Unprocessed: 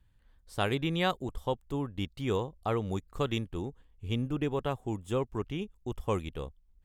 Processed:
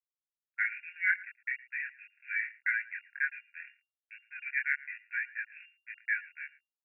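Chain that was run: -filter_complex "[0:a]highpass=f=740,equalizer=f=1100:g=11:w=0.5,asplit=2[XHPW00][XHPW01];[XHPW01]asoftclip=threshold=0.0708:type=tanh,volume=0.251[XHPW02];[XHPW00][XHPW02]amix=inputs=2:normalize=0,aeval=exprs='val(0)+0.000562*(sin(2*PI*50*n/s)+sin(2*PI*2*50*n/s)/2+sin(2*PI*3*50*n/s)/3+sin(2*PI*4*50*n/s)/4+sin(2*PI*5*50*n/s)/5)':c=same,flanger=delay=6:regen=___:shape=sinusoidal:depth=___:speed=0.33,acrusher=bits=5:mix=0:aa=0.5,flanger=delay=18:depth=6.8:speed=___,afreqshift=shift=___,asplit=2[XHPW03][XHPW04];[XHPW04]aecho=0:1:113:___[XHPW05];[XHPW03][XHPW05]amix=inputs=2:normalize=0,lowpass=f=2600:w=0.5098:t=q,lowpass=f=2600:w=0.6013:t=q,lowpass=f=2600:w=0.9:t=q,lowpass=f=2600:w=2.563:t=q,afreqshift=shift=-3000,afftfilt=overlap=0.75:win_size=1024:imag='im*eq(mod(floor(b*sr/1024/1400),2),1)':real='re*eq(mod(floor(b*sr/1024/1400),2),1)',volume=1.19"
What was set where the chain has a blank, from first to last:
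32, 1.2, 2.9, 220, 0.0944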